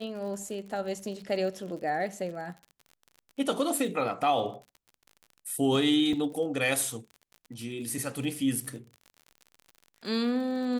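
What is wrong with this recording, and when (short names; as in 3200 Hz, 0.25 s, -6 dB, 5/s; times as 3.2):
crackle 48/s -39 dBFS
6.13 gap 3.2 ms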